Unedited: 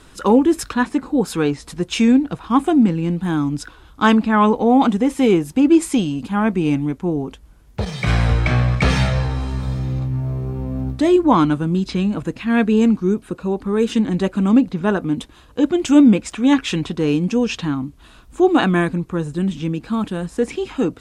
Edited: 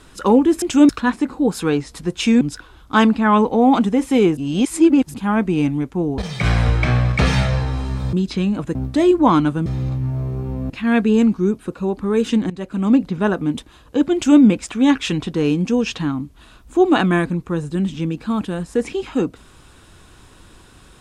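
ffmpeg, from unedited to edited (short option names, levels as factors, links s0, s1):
-filter_complex "[0:a]asplit=12[s0][s1][s2][s3][s4][s5][s6][s7][s8][s9][s10][s11];[s0]atrim=end=0.622[s12];[s1]atrim=start=15.768:end=16.042[s13];[s2]atrim=start=0.618:end=2.142[s14];[s3]atrim=start=3.488:end=5.452[s15];[s4]atrim=start=5.448:end=6.222,asetpts=PTS-STARTPTS,areverse[s16];[s5]atrim=start=6.218:end=7.262[s17];[s6]atrim=start=7.808:end=9.762[s18];[s7]atrim=start=11.708:end=12.332[s19];[s8]atrim=start=10.798:end=11.712[s20];[s9]atrim=start=9.758:end=10.802[s21];[s10]atrim=start=12.328:end=14.13,asetpts=PTS-STARTPTS,afade=t=out:st=1.798:d=0.004:c=hsin:silence=0.158489[s22];[s11]atrim=start=14.13,asetpts=PTS-STARTPTS,afade=t=in:d=0.5:silence=0.158489[s23];[s12][s13]acrossfade=d=0.004:c1=hsin:c2=hsin[s24];[s24][s14]acrossfade=d=0.004:c1=hsin:c2=hsin[s25];[s25][s15]acrossfade=d=0.004:c1=hsin:c2=hsin[s26];[s26][s16]acrossfade=d=0.004:c1=hsin:c2=hsin[s27];[s27][s17]acrossfade=d=0.004:c1=hsin:c2=hsin[s28];[s28][s18]acrossfade=d=0.004:c1=hsin:c2=hsin[s29];[s29][s19]acrossfade=d=0.004:c1=hsin:c2=hsin[s30];[s30][s20]acrossfade=d=0.004:c1=hsin:c2=hsin[s31];[s31][s21]acrossfade=d=0.004:c1=hsin:c2=hsin[s32];[s22][s23]concat=n=2:v=0:a=1[s33];[s32][s33]acrossfade=d=0.004:c1=hsin:c2=hsin"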